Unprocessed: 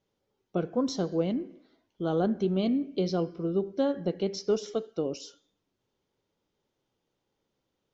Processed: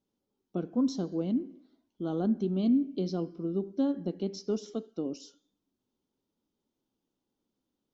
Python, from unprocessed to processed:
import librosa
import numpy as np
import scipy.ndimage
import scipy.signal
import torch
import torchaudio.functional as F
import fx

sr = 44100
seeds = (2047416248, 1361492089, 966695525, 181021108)

y = fx.graphic_eq_10(x, sr, hz=(125, 250, 500, 2000), db=(-5, 10, -5, -8))
y = y * librosa.db_to_amplitude(-5.0)